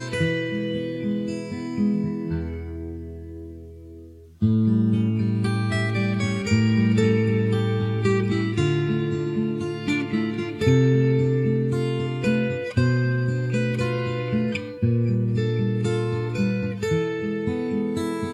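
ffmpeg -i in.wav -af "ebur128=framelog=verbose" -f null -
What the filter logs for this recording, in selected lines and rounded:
Integrated loudness:
  I:         -23.4 LUFS
  Threshold: -33.8 LUFS
Loudness range:
  LRA:         5.3 LU
  Threshold: -43.5 LUFS
  LRA low:   -27.1 LUFS
  LRA high:  -21.9 LUFS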